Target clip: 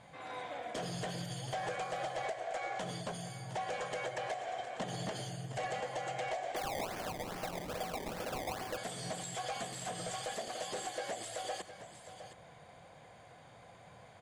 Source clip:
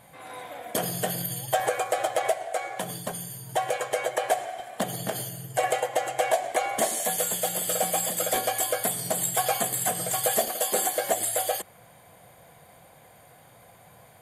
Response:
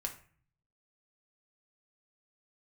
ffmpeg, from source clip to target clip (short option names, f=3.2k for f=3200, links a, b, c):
-filter_complex "[0:a]acompressor=threshold=-28dB:ratio=6,volume=30.5dB,asoftclip=hard,volume=-30.5dB,lowpass=f=6.9k:w=0.5412,lowpass=f=6.9k:w=1.3066,aecho=1:1:713:0.251,asplit=3[a][b][c];[a]afade=t=out:st=6.55:d=0.02[d];[b]acrusher=samples=22:mix=1:aa=0.000001:lfo=1:lforange=22:lforate=2.4,afade=t=in:st=6.55:d=0.02,afade=t=out:st=8.76:d=0.02[e];[c]afade=t=in:st=8.76:d=0.02[f];[d][e][f]amix=inputs=3:normalize=0,volume=-3dB"